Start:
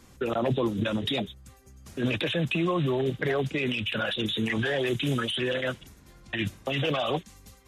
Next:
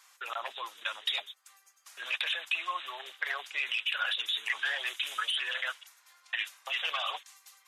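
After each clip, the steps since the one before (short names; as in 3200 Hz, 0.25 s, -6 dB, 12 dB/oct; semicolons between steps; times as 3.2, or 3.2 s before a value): HPF 960 Hz 24 dB/oct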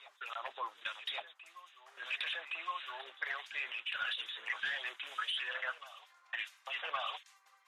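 harmonic tremolo 1.6 Hz, depth 70%, crossover 1800 Hz; overdrive pedal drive 8 dB, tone 1300 Hz, clips at -19 dBFS; reverse echo 1.117 s -15 dB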